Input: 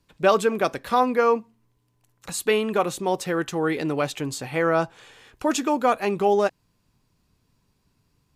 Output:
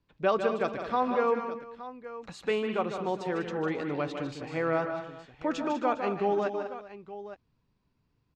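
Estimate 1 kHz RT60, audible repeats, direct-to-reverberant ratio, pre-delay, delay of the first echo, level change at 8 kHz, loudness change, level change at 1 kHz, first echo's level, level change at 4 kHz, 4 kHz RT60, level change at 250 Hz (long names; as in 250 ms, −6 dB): no reverb audible, 5, no reverb audible, no reverb audible, 151 ms, below −20 dB, −7.0 dB, −6.5 dB, −8.5 dB, −10.0 dB, no reverb audible, −6.0 dB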